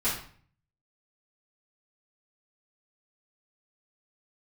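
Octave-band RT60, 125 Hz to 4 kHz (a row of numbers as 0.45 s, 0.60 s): 0.85 s, 0.60 s, 0.50 s, 0.50 s, 0.45 s, 0.40 s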